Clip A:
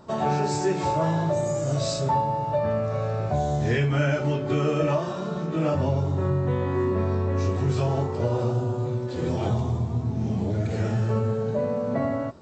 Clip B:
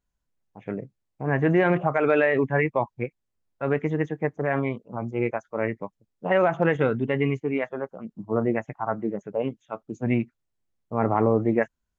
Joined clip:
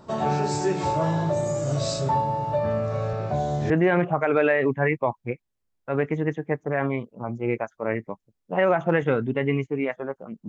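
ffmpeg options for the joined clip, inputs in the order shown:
ffmpeg -i cue0.wav -i cue1.wav -filter_complex "[0:a]asettb=1/sr,asplit=3[link_01][link_02][link_03];[link_01]atrim=end=3.134[link_04];[link_02]atrim=start=3.13:end=3.7,asetpts=PTS-STARTPTS,afade=type=in:duration=0.004:curve=qsin,afade=type=out:start_time=0.566:duration=0.004:curve=qsin,highpass=110,lowpass=6400[link_05];[link_03]atrim=start=3.696[link_06];[link_04][link_05]acrossfade=duration=0.004:curve1=hsin:curve2=qsin[link_07];[link_07][link_06]acrossfade=duration=0.004:curve1=qsin:curve2=hsin,apad=whole_dur=10.48,atrim=end=10.48,atrim=end=3.702[link_08];[1:a]atrim=start=1.428:end=8.21[link_09];[link_08][link_09]acrossfade=duration=0.004:curve1=hsin:curve2=hsin" out.wav

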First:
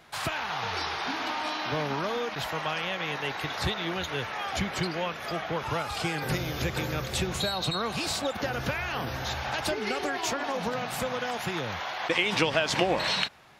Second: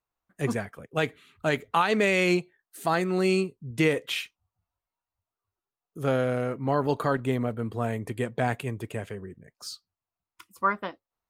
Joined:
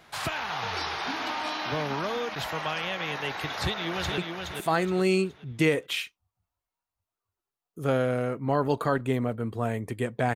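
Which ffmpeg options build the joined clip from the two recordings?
ffmpeg -i cue0.wav -i cue1.wav -filter_complex "[0:a]apad=whole_dur=10.35,atrim=end=10.35,atrim=end=4.182[link_01];[1:a]atrim=start=2.368:end=8.54[link_02];[link_01][link_02]acrossfade=duration=0.004:curve1=hsin:curve2=hsin,asplit=2[link_03][link_04];[link_04]afade=type=in:start_time=3.51:duration=0.01,afade=type=out:start_time=4.18:duration=0.01,aecho=0:1:420|840|1260|1680:0.595662|0.208482|0.0729686|0.025539[link_05];[link_03][link_05]amix=inputs=2:normalize=0" out.wav

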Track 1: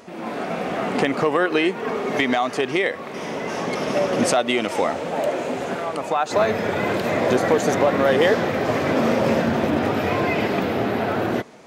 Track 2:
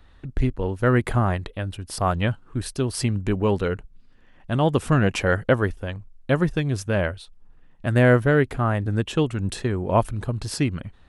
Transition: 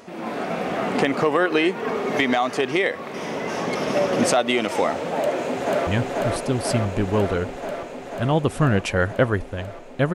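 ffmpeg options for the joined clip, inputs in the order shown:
ffmpeg -i cue0.wav -i cue1.wav -filter_complex "[0:a]apad=whole_dur=10.14,atrim=end=10.14,atrim=end=5.872[link_01];[1:a]atrim=start=2.168:end=6.44[link_02];[link_01][link_02]acrossfade=duration=0.004:curve1=hsin:curve2=hsin,asplit=2[link_03][link_04];[link_04]afade=type=in:start_time=5.17:duration=0.01,afade=type=out:start_time=5.87:duration=0.01,aecho=0:1:490|980|1470|1960|2450|2940|3430|3920|4410|4900|5390|5880:0.841395|0.673116|0.538493|0.430794|0.344635|0.275708|0.220567|0.176453|0.141163|0.11293|0.0903441|0.0722753[link_05];[link_03][link_05]amix=inputs=2:normalize=0" out.wav

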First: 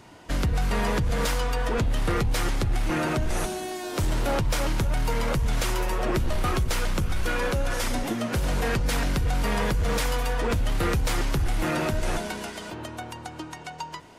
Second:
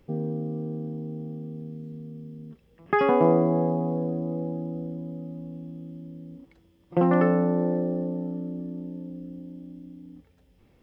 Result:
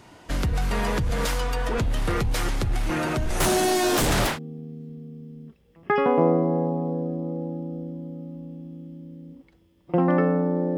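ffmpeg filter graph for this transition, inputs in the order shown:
ffmpeg -i cue0.wav -i cue1.wav -filter_complex "[0:a]asettb=1/sr,asplit=3[link_01][link_02][link_03];[link_01]atrim=end=3.404[link_04];[link_02]atrim=start=3.4:end=4.39,asetpts=PTS-STARTPTS,afade=type=in:duration=0.004:curve=qsin,afade=type=out:start_time=0.986:duration=0.004:curve=qsin,aeval=exprs='0.141*sin(PI/2*3.16*val(0)/0.141)':channel_layout=same[link_05];[link_03]atrim=start=4.386[link_06];[link_04][link_05]acrossfade=duration=0.004:curve1=hsin:curve2=qsin[link_07];[link_07][link_06]acrossfade=duration=0.004:curve1=qsin:curve2=hsin,apad=whole_dur=10.77,atrim=end=10.77,atrim=end=4.39,asetpts=PTS-STARTPTS[link_08];[1:a]atrim=start=1.26:end=7.8,asetpts=PTS-STARTPTS[link_09];[link_08][link_09]acrossfade=duration=0.16:curve1=tri:curve2=tri" out.wav

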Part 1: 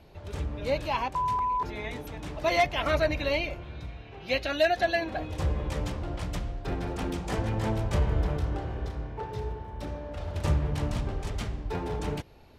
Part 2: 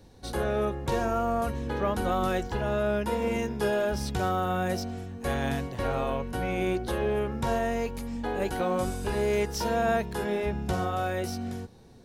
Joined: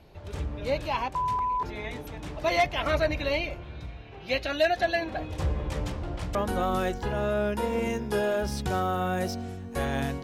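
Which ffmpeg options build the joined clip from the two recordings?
ffmpeg -i cue0.wav -i cue1.wav -filter_complex "[0:a]apad=whole_dur=10.23,atrim=end=10.23,atrim=end=6.352[link_01];[1:a]atrim=start=1.838:end=5.72[link_02];[link_01][link_02]acrossfade=duration=0.004:curve1=hsin:curve2=hsin" out.wav

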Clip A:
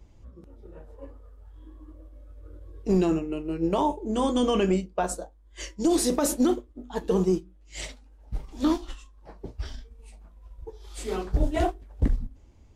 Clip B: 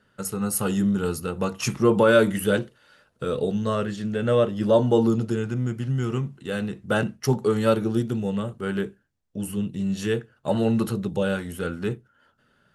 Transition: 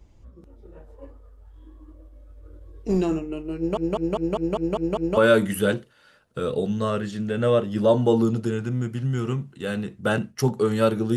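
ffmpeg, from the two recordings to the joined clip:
ffmpeg -i cue0.wav -i cue1.wav -filter_complex "[0:a]apad=whole_dur=11.16,atrim=end=11.16,asplit=8[link_01][link_02][link_03][link_04][link_05][link_06][link_07][link_08];[link_01]atrim=end=3.772[link_09];[link_02]atrim=start=3.568:end=3.772[link_10];[link_03]atrim=start=3.568:end=3.772[link_11];[link_04]atrim=start=3.568:end=3.772[link_12];[link_05]atrim=start=3.568:end=3.772[link_13];[link_06]atrim=start=3.568:end=3.772[link_14];[link_07]atrim=start=3.568:end=3.772[link_15];[link_08]atrim=start=3.568:end=3.772[link_16];[1:a]atrim=start=2.018:end=8.01[link_17];[link_09][link_10]acrossfade=duration=0.004:curve1=hsin:curve2=hsin[link_18];[link_18][link_11]acrossfade=duration=0.004:curve1=hsin:curve2=hsin[link_19];[link_19][link_12]acrossfade=duration=0.004:curve1=hsin:curve2=hsin[link_20];[link_20][link_13]acrossfade=duration=0.004:curve1=hsin:curve2=hsin[link_21];[link_21][link_14]acrossfade=duration=0.004:curve1=hsin:curve2=hsin[link_22];[link_22][link_15]acrossfade=duration=0.004:curve1=hsin:curve2=hsin[link_23];[link_23][link_16]acrossfade=duration=0.004:curve1=hsin:curve2=hsin[link_24];[link_24][link_17]acrossfade=duration=0.004:curve1=hsin:curve2=hsin" out.wav

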